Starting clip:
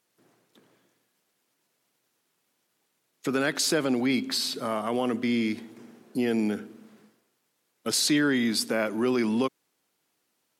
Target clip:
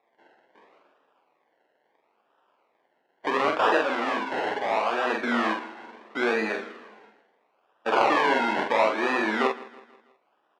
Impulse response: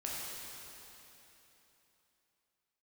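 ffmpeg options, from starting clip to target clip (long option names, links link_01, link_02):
-filter_complex "[0:a]asplit=2[link_01][link_02];[link_02]alimiter=limit=-21.5dB:level=0:latency=1,volume=-2dB[link_03];[link_01][link_03]amix=inputs=2:normalize=0,acrusher=samples=29:mix=1:aa=0.000001:lfo=1:lforange=17.4:lforate=0.74,flanger=delay=8.9:depth=4.7:regen=64:speed=0.25:shape=sinusoidal,asettb=1/sr,asplit=3[link_04][link_05][link_06];[link_04]atrim=end=3.784[link_07];[link_05]atrim=start=3.78:end=5.06,asetpts=PTS-STARTPTS,afade=type=in:duration=0.004:curve=qsin,afade=type=out:start_time=1.276:duration=0.004:curve=qsin,asoftclip=type=hard:threshold=-27dB[link_08];[link_06]atrim=start=5.056[link_09];[link_07][link_08]acrossfade=duration=0.004:curve1=hsin:curve2=qsin[link_10];[link_10][link_09]acrossfade=duration=0.004:curve1=qsin:curve2=hsin,highpass=620,lowpass=2200,asplit=2[link_11][link_12];[link_12]adelay=46,volume=-4dB[link_13];[link_11][link_13]amix=inputs=2:normalize=0,aecho=1:1:162|324|486|648:0.112|0.0527|0.0248|0.0116,volume=9dB"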